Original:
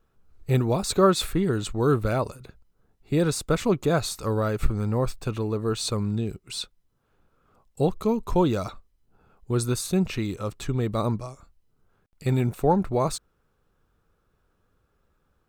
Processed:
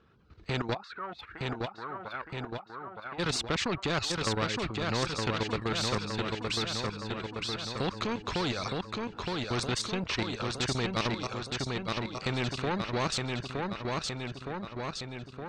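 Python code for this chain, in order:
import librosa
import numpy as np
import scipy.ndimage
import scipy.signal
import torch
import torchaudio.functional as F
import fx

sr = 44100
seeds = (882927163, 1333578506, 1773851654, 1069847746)

y = scipy.signal.sosfilt(scipy.signal.butter(2, 87.0, 'highpass', fs=sr, output='sos'), x)
y = fx.dereverb_blind(y, sr, rt60_s=0.52)
y = scipy.signal.sosfilt(scipy.signal.butter(4, 4600.0, 'lowpass', fs=sr, output='sos'), y)
y = fx.peak_eq(y, sr, hz=690.0, db=-6.5, octaves=0.96)
y = fx.level_steps(y, sr, step_db=14)
y = 10.0 ** (-23.5 / 20.0) * np.tanh(y / 10.0 ** (-23.5 / 20.0))
y = fx.wah_lfo(y, sr, hz=2.4, low_hz=690.0, high_hz=1500.0, q=8.3, at=(0.73, 3.18), fade=0.02)
y = fx.echo_feedback(y, sr, ms=916, feedback_pct=47, wet_db=-5.5)
y = fx.spectral_comp(y, sr, ratio=2.0)
y = y * librosa.db_to_amplitude(5.0)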